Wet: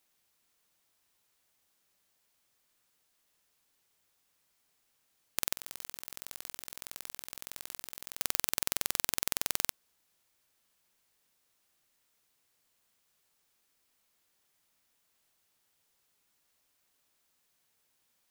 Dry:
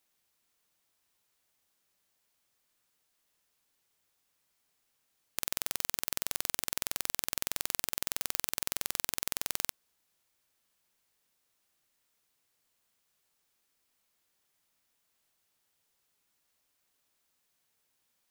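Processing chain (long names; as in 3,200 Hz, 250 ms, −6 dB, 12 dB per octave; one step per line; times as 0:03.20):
0:05.56–0:08.18: compressor whose output falls as the input rises −42 dBFS, ratio −0.5
level +2 dB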